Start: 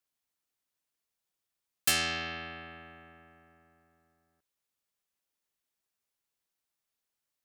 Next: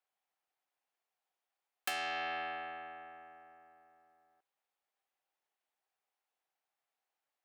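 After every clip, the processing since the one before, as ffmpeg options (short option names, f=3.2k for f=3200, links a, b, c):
-filter_complex "[0:a]acrossover=split=340 3100:gain=0.1 1 0.251[a][b][c];[a][b][c]amix=inputs=3:normalize=0,acompressor=threshold=-36dB:ratio=10,equalizer=f=770:t=o:w=0.33:g=10,volume=1.5dB"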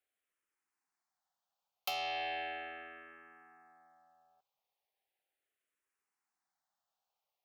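-filter_complex "[0:a]asplit=2[a][b];[b]afreqshift=-0.37[c];[a][c]amix=inputs=2:normalize=1,volume=2.5dB"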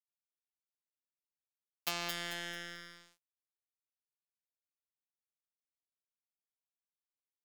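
-af "afftfilt=real='hypot(re,im)*cos(PI*b)':imag='0':win_size=1024:overlap=0.75,aecho=1:1:220|440|660|880|1100:0.631|0.265|0.111|0.0467|0.0196,aeval=exprs='sgn(val(0))*max(abs(val(0))-0.00631,0)':c=same,volume=8dB"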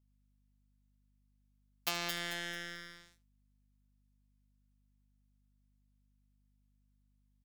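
-af "aeval=exprs='val(0)+0.000224*(sin(2*PI*50*n/s)+sin(2*PI*2*50*n/s)/2+sin(2*PI*3*50*n/s)/3+sin(2*PI*4*50*n/s)/4+sin(2*PI*5*50*n/s)/5)':c=same,aecho=1:1:76:0.133,volume=1dB"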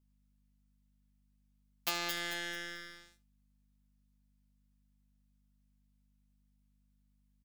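-filter_complex "[0:a]asplit=2[a][b];[b]adelay=15,volume=-6dB[c];[a][c]amix=inputs=2:normalize=0"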